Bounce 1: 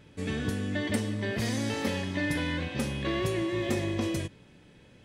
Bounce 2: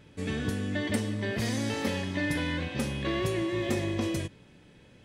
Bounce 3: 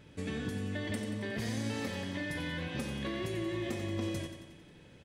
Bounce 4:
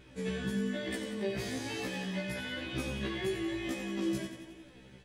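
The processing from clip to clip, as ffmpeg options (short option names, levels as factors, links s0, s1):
-af anull
-filter_complex "[0:a]acompressor=threshold=0.0224:ratio=4,asplit=2[s0][s1];[s1]aecho=0:1:90|180|270|360|450|540|630:0.376|0.222|0.131|0.0772|0.0455|0.0269|0.0159[s2];[s0][s2]amix=inputs=2:normalize=0,volume=0.841"
-af "flanger=delay=2.6:depth=3.2:regen=45:speed=1.1:shape=triangular,afftfilt=real='re*1.73*eq(mod(b,3),0)':imag='im*1.73*eq(mod(b,3),0)':win_size=2048:overlap=0.75,volume=2.51"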